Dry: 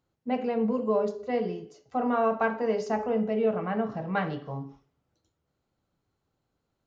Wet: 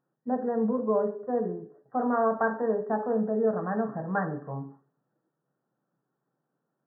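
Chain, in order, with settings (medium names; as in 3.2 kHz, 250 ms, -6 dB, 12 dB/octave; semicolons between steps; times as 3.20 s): FFT band-pass 120–1900 Hz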